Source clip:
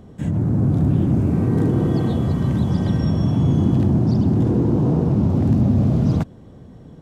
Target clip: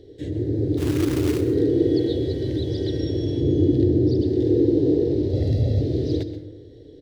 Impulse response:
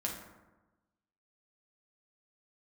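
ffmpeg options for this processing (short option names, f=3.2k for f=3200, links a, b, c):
-filter_complex "[0:a]firequalizer=gain_entry='entry(110,0);entry(200,-20);entry(300,10);entry(440,13);entry(690,-8);entry(1200,-25);entry(1800,3);entry(2500,-2);entry(3900,15);entry(7000,-3)':delay=0.05:min_phase=1,asplit=3[a][b][c];[a]afade=t=out:st=0.77:d=0.02[d];[b]acrusher=bits=3:mode=log:mix=0:aa=0.000001,afade=t=in:st=0.77:d=0.02,afade=t=out:st=1.39:d=0.02[e];[c]afade=t=in:st=1.39:d=0.02[f];[d][e][f]amix=inputs=3:normalize=0,asettb=1/sr,asplit=3[g][h][i];[g]atrim=end=3.404[j];[h]atrim=start=3.4:end=4.22,asetpts=PTS-STARTPTS,afade=t=in:d=0.004:c=qsin,afade=t=out:st=0.816:d=0.004:c=qsin,tiltshelf=f=710:g=4[k];[i]atrim=start=4.216[l];[j][k]acrossfade=d=0.004:c1=hsin:c2=qsin[m];[m][l]acrossfade=d=0.004:c1=qsin:c2=hsin,asettb=1/sr,asplit=3[n][o][p];[n]atrim=end=5.334[q];[o]atrim=start=5.33:end=5.81,asetpts=PTS-STARTPTS,afade=t=in:d=0.004:c=qsin,afade=t=out:st=0.476:d=0.004:c=qsin,aecho=1:1:1.5:0.99,atrim=end_sample=21168[r];[p]atrim=start=5.806[s];[q][r]acrossfade=d=0.004:c1=hsin:c2=qsin[t];[t][s]acrossfade=d=0.004:c1=qsin:c2=hsin,asplit=2[u][v];[v]adelay=93.29,volume=-19dB,highshelf=f=4k:g=-2.1[w];[u][w]amix=inputs=2:normalize=0,asplit=2[x][y];[1:a]atrim=start_sample=2205,adelay=128[z];[y][z]afir=irnorm=-1:irlink=0,volume=-13dB[aa];[x][aa]amix=inputs=2:normalize=0,volume=-6dB"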